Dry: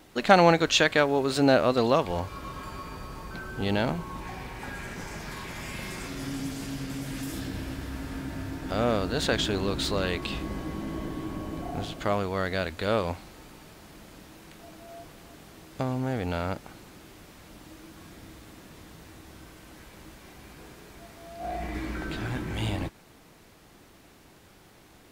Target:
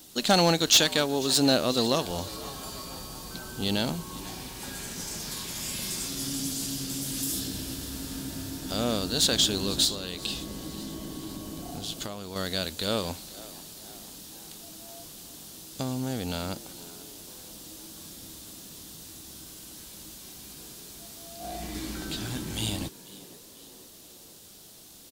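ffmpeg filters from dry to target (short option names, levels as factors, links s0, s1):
-filter_complex "[0:a]equalizer=f=220:w=0.95:g=5.5,asettb=1/sr,asplit=3[s0][s1][s2];[s0]atrim=end=9.844[s3];[s1]atrim=start=9.84:end=12.36,asetpts=PTS-STARTPTS,afade=t=in:d=0.004:c=qsin,afade=t=out:st=2.516:d=0.004:c=qsin,acompressor=threshold=0.0355:ratio=6[s4];[s2]atrim=start=12.356[s5];[s3][s4]acrossfade=d=0.004:c1=hsin:c2=qsin[s6];[s6][s5]acrossfade=d=0.004:c1=qsin:c2=hsin,aexciter=amount=7.1:drive=3.3:freq=3100,asoftclip=type=hard:threshold=0.398,asplit=6[s7][s8][s9][s10][s11][s12];[s8]adelay=491,afreqshift=83,volume=0.112[s13];[s9]adelay=982,afreqshift=166,volume=0.0631[s14];[s10]adelay=1473,afreqshift=249,volume=0.0351[s15];[s11]adelay=1964,afreqshift=332,volume=0.0197[s16];[s12]adelay=2455,afreqshift=415,volume=0.0111[s17];[s7][s13][s14][s15][s16][s17]amix=inputs=6:normalize=0,volume=0.531"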